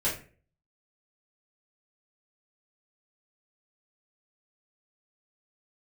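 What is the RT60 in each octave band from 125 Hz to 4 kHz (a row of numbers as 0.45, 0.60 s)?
0.60, 0.50, 0.45, 0.35, 0.40, 0.25 s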